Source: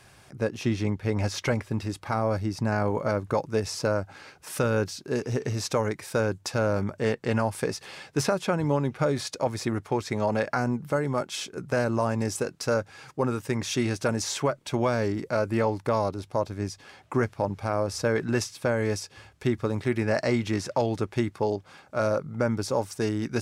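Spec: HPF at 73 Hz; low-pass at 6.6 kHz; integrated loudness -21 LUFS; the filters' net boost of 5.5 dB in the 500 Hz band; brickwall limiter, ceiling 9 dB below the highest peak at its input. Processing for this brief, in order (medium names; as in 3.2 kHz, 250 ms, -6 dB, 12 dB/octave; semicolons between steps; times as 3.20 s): high-pass 73 Hz; low-pass 6.6 kHz; peaking EQ 500 Hz +6.5 dB; trim +8 dB; peak limiter -9.5 dBFS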